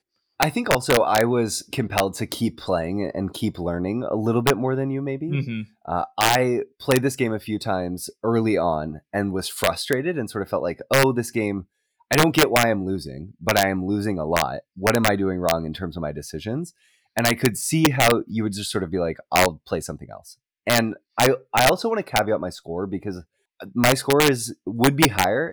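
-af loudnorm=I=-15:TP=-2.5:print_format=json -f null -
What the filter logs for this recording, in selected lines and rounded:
"input_i" : "-22.1",
"input_tp" : "-4.3",
"input_lra" : "2.8",
"input_thresh" : "-32.4",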